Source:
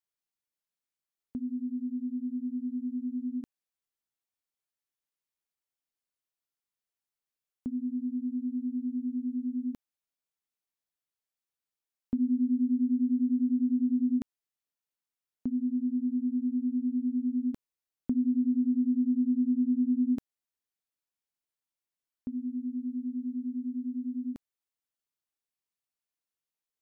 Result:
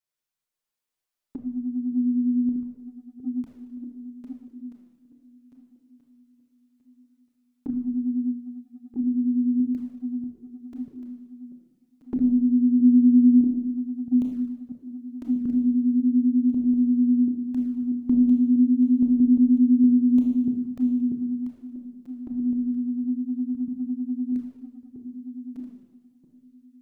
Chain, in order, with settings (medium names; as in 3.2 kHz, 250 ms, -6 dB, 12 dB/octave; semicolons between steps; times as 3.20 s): backward echo that repeats 640 ms, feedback 49%, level -3.5 dB; Schroeder reverb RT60 1.1 s, combs from 25 ms, DRR 0.5 dB; touch-sensitive flanger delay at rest 8.3 ms, full sweep at -23.5 dBFS; trim +4 dB